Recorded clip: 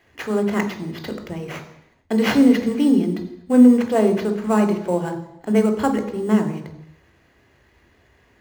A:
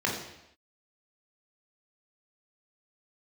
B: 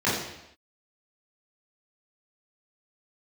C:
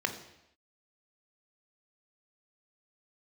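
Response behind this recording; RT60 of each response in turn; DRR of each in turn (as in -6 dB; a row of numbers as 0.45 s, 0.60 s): C; no single decay rate, no single decay rate, no single decay rate; -2.5 dB, -10.5 dB, 6.0 dB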